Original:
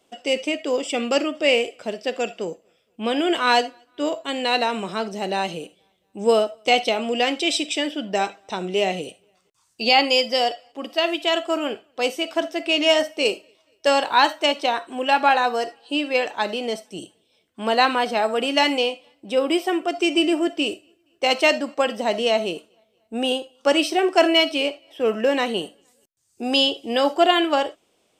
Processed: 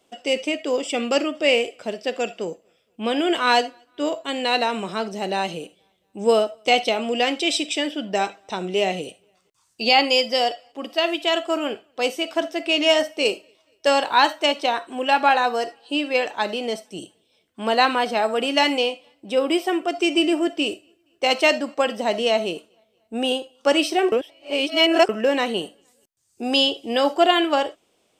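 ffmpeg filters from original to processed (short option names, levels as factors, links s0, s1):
-filter_complex "[0:a]asplit=3[s0][s1][s2];[s0]atrim=end=24.122[s3];[s1]atrim=start=24.118:end=25.092,asetpts=PTS-STARTPTS,areverse[s4];[s2]atrim=start=25.088[s5];[s3][s4]acrossfade=d=0.004:c1=hsin:c2=hsin[s6];[s6][s5]acrossfade=d=0.004:c1=hsin:c2=hsin"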